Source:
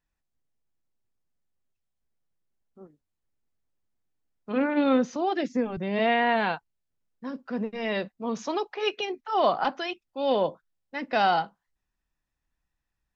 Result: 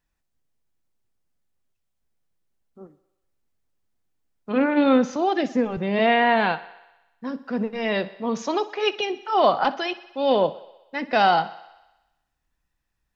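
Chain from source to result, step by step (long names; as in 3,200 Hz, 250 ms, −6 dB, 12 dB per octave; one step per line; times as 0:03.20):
feedback echo with a high-pass in the loop 62 ms, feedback 68%, high-pass 240 Hz, level −17.5 dB
level +4.5 dB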